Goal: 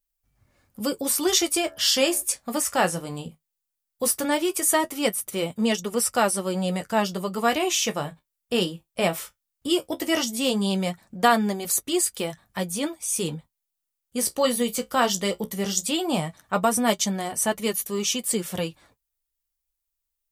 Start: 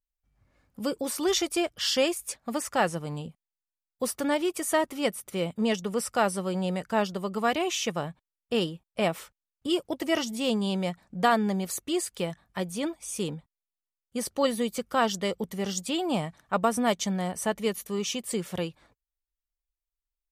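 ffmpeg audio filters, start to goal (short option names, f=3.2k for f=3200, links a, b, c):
-filter_complex "[0:a]asplit=3[a][b][c];[a]afade=t=out:st=1.6:d=0.02[d];[b]bandreject=f=72.49:t=h:w=4,bandreject=f=144.98:t=h:w=4,bandreject=f=217.47:t=h:w=4,bandreject=f=289.96:t=h:w=4,bandreject=f=362.45:t=h:w=4,bandreject=f=434.94:t=h:w=4,bandreject=f=507.43:t=h:w=4,bandreject=f=579.92:t=h:w=4,bandreject=f=652.41:t=h:w=4,bandreject=f=724.9:t=h:w=4,bandreject=f=797.39:t=h:w=4,bandreject=f=869.88:t=h:w=4,bandreject=f=942.37:t=h:w=4,bandreject=f=1.01486k:t=h:w=4,bandreject=f=1.08735k:t=h:w=4,bandreject=f=1.15984k:t=h:w=4,bandreject=f=1.23233k:t=h:w=4,bandreject=f=1.30482k:t=h:w=4,bandreject=f=1.37731k:t=h:w=4,bandreject=f=1.4498k:t=h:w=4,bandreject=f=1.52229k:t=h:w=4,bandreject=f=1.59478k:t=h:w=4,bandreject=f=1.66727k:t=h:w=4,bandreject=f=1.73976k:t=h:w=4,bandreject=f=1.81225k:t=h:w=4,afade=t=in:st=1.6:d=0.02,afade=t=out:st=2.21:d=0.02[e];[c]afade=t=in:st=2.21:d=0.02[f];[d][e][f]amix=inputs=3:normalize=0,crystalizer=i=1.5:c=0,flanger=delay=7.9:depth=8.5:regen=-42:speed=0.17:shape=sinusoidal,volume=6.5dB"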